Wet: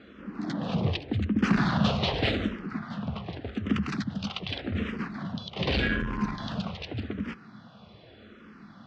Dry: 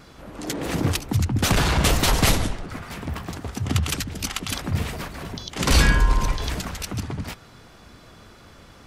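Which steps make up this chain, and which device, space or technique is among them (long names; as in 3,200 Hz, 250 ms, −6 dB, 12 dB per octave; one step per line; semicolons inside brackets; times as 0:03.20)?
barber-pole phaser into a guitar amplifier (frequency shifter mixed with the dry sound −0.85 Hz; soft clipping −16 dBFS, distortion −14 dB; loudspeaker in its box 100–3,800 Hz, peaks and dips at 210 Hz +10 dB, 920 Hz −5 dB, 2,200 Hz −3 dB)
0:00.59–0:01.41: notch filter 1,400 Hz, Q 10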